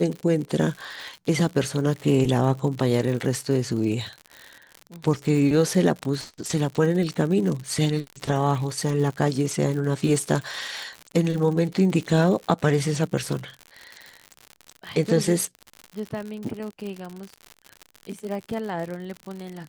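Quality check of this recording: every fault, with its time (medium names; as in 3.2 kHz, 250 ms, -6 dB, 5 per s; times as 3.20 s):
crackle 89 per s -30 dBFS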